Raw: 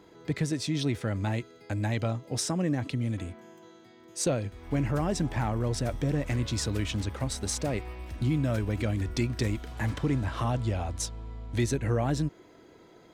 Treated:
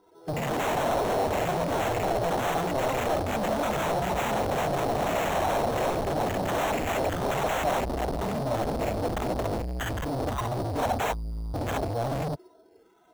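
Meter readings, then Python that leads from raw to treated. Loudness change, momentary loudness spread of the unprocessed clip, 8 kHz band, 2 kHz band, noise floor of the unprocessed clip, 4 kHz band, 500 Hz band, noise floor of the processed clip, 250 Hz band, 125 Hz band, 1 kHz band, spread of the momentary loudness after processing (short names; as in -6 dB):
+2.5 dB, 7 LU, -3.0 dB, +6.0 dB, -55 dBFS, +1.5 dB, +7.5 dB, -58 dBFS, -1.5 dB, -4.5 dB, +12.0 dB, 5 LU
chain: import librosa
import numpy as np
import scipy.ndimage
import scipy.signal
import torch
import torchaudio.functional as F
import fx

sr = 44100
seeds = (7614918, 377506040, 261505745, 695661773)

p1 = fx.bin_expand(x, sr, power=2.0)
p2 = fx.over_compress(p1, sr, threshold_db=-36.0, ratio=-0.5)
p3 = p2 + fx.room_early_taps(p2, sr, ms=(30, 52, 63), db=(-9.5, -6.0, -3.5), dry=0)
p4 = fx.filter_lfo_notch(p3, sr, shape='saw_down', hz=1.3, low_hz=380.0, high_hz=5700.0, q=0.94)
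p5 = fx.peak_eq(p4, sr, hz=82.0, db=2.5, octaves=2.2)
p6 = fx.echo_pitch(p5, sr, ms=188, semitones=7, count=2, db_per_echo=-3.0)
p7 = fx.fold_sine(p6, sr, drive_db=17, ceiling_db=-18.0)
p8 = fx.sample_hold(p7, sr, seeds[0], rate_hz=4800.0, jitter_pct=0)
p9 = 10.0 ** (-29.5 / 20.0) * np.tanh(p8 / 10.0 ** (-29.5 / 20.0))
p10 = fx.peak_eq(p9, sr, hz=680.0, db=12.5, octaves=1.1)
y = p10 * librosa.db_to_amplitude(-1.5)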